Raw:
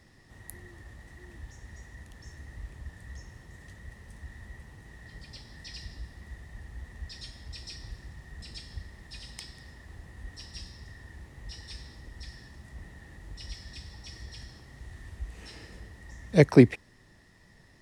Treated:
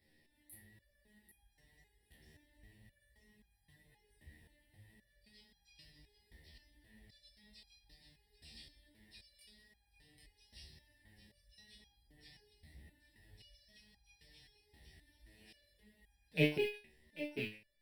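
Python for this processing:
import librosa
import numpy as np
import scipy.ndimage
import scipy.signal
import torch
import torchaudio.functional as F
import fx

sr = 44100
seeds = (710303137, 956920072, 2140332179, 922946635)

y = fx.rattle_buzz(x, sr, strikes_db=-24.0, level_db=-9.0)
y = fx.high_shelf(y, sr, hz=5900.0, db=10.5)
y = fx.fixed_phaser(y, sr, hz=2900.0, stages=4)
y = y + 10.0 ** (-9.0 / 20.0) * np.pad(y, (int(792 * sr / 1000.0), 0))[:len(y)]
y = fx.chorus_voices(y, sr, voices=4, hz=0.92, base_ms=21, depth_ms=3.0, mix_pct=50)
y = fx.low_shelf(y, sr, hz=160.0, db=-7.0)
y = fx.resonator_held(y, sr, hz=3.8, low_hz=76.0, high_hz=820.0)
y = y * librosa.db_to_amplitude(1.5)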